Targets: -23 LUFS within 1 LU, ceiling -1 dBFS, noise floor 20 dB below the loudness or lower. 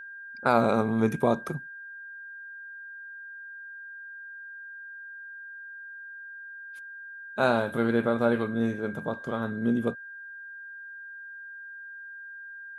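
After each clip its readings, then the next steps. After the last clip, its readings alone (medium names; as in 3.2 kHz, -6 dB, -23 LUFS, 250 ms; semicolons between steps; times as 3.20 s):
steady tone 1.6 kHz; tone level -40 dBFS; loudness -27.0 LUFS; peak level -7.5 dBFS; loudness target -23.0 LUFS
-> band-stop 1.6 kHz, Q 30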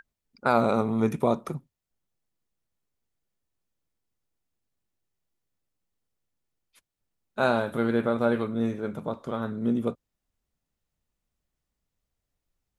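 steady tone not found; loudness -27.0 LUFS; peak level -8.0 dBFS; loudness target -23.0 LUFS
-> trim +4 dB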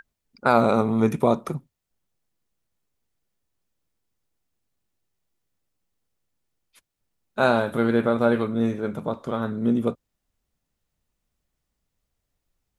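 loudness -23.0 LUFS; peak level -4.0 dBFS; noise floor -81 dBFS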